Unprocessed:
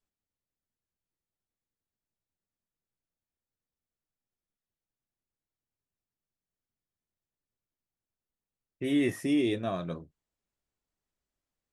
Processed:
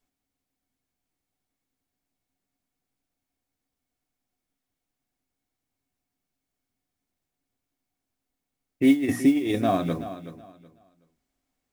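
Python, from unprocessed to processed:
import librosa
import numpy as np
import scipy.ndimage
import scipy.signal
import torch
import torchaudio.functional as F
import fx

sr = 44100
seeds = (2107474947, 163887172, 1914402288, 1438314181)

y = fx.hum_notches(x, sr, base_hz=60, count=5)
y = fx.over_compress(y, sr, threshold_db=-30.0, ratio=-0.5)
y = fx.small_body(y, sr, hz=(270.0, 730.0, 2200.0), ring_ms=90, db=12)
y = fx.mod_noise(y, sr, seeds[0], snr_db=30)
y = fx.echo_feedback(y, sr, ms=374, feedback_pct=24, wet_db=-13)
y = y * librosa.db_to_amplitude(4.5)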